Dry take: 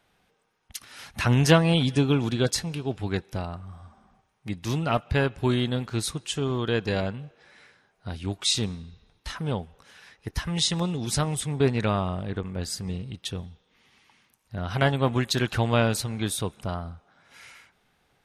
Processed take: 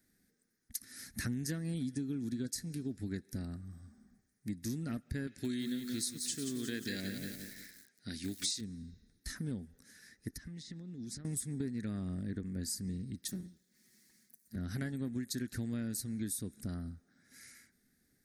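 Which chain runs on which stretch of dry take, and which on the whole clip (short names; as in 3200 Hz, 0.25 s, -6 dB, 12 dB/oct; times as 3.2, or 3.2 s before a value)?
5.27–8.61 weighting filter D + lo-fi delay 0.176 s, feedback 55%, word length 7-bit, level -8 dB
10.28–11.25 treble ducked by the level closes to 3000 Hz, closed at -21 dBFS + compressor 16:1, threshold -37 dBFS
13.28–14.56 minimum comb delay 5.4 ms + HPF 51 Hz + high shelf 7200 Hz +5 dB
whole clip: EQ curve 150 Hz 0 dB, 250 Hz +10 dB, 440 Hz -5 dB, 1000 Hz -21 dB, 1800 Hz +2 dB, 2900 Hz -17 dB, 4400 Hz +2 dB, 12000 Hz +12 dB; compressor 6:1, threshold -28 dBFS; gain -7 dB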